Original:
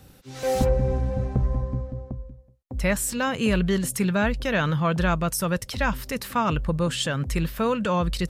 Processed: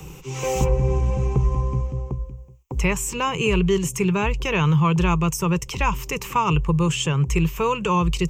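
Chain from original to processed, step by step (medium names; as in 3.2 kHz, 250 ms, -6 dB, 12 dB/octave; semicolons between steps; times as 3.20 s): rippled EQ curve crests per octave 0.73, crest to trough 15 dB; three bands compressed up and down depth 40%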